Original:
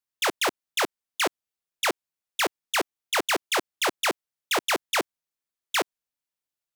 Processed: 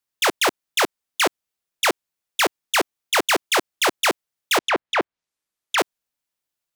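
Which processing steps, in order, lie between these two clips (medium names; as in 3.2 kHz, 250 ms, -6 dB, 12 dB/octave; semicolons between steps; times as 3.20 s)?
4.58–5.78 s: low-pass that closes with the level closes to 2.2 kHz, closed at -24.5 dBFS; trim +5.5 dB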